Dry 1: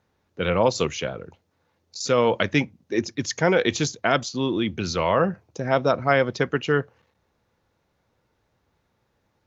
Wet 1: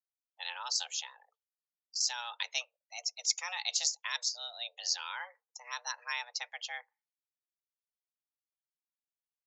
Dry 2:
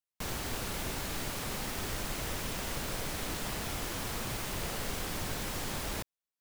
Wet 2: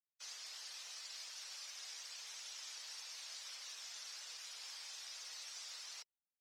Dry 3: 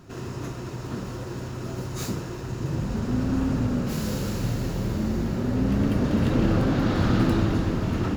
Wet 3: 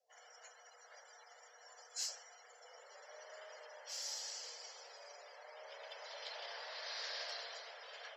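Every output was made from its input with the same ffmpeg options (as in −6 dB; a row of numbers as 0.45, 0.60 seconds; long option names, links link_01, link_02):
-af "afftdn=noise_reduction=29:noise_floor=-44,bandpass=frequency=5100:width_type=q:width=2.3:csg=0,afreqshift=360,volume=2.5dB"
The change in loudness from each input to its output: −11.5, −11.5, −20.0 LU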